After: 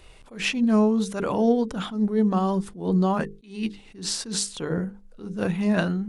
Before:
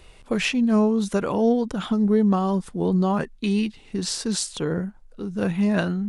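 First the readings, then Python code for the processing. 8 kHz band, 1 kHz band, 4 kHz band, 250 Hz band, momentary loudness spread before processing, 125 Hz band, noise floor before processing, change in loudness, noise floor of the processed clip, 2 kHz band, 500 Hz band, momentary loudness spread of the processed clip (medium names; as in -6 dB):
-0.5 dB, -0.5 dB, -1.0 dB, -2.0 dB, 9 LU, -1.5 dB, -49 dBFS, -1.5 dB, -50 dBFS, -1.0 dB, -2.0 dB, 12 LU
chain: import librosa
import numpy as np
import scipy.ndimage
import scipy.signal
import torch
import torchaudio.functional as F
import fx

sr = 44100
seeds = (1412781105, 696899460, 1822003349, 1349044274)

y = fx.hum_notches(x, sr, base_hz=50, count=10)
y = fx.attack_slew(y, sr, db_per_s=140.0)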